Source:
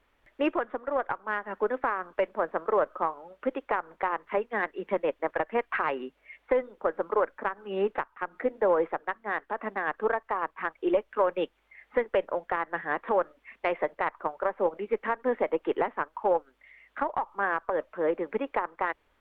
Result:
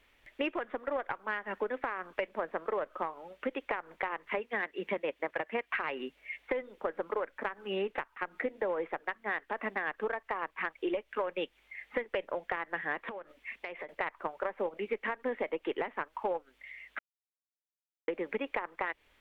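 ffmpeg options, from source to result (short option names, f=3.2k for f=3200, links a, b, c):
-filter_complex "[0:a]asettb=1/sr,asplit=3[a][b][c];[a]atrim=end=4.394[d];[b]atrim=start=4.39:end=5.76,asetpts=PTS-STARTPTS,afade=t=in:d=0.004:c=qsin,afade=t=out:st=1.366:d=0.004:c=qsin,highpass=53[e];[c]atrim=start=5.756[f];[d][e]acrossfade=d=0.004:c1=hsin:c2=qsin[g];[g][f]acrossfade=d=0.004:c1=qsin:c2=hsin,asettb=1/sr,asplit=3[h][i][j];[h]atrim=end=13.094[k];[i]atrim=start=13.09:end=13.89,asetpts=PTS-STARTPTS,afade=t=in:d=0.004:c=qsin,afade=t=out:st=0.796:d=0.004:c=qsin,acompressor=threshold=-38dB:ratio=12:attack=3.2:release=140:knee=1:detection=peak[l];[j]atrim=start=13.886[m];[k][l]acrossfade=d=0.004:c1=hsin:c2=qsin[n];[n][m]acrossfade=d=0.004:c1=qsin:c2=hsin,asplit=3[o][p][q];[o]atrim=end=16.99,asetpts=PTS-STARTPTS,afade=t=out:st=16.986:d=0.004:c=hsin[r];[p]atrim=start=16.99:end=18.08,asetpts=PTS-STARTPTS,volume=0[s];[q]atrim=start=18.08,asetpts=PTS-STARTPTS,afade=t=in:d=0.004:c=hsin[t];[r][s][t]concat=n=3:v=0:a=1,highshelf=f=1.7k:t=q:w=1.5:g=6,acompressor=threshold=-30dB:ratio=6"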